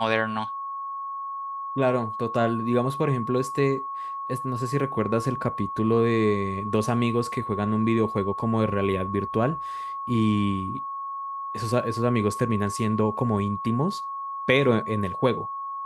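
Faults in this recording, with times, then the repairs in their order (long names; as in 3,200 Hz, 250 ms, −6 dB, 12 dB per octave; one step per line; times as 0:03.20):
whistle 1,100 Hz −30 dBFS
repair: notch filter 1,100 Hz, Q 30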